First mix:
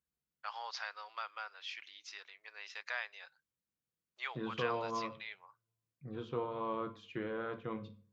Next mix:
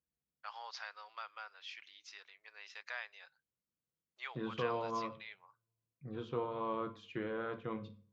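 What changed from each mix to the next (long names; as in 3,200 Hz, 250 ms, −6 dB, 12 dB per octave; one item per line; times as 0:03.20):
first voice −4.0 dB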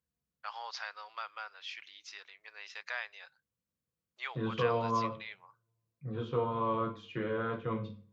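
first voice +5.0 dB
second voice: send +8.5 dB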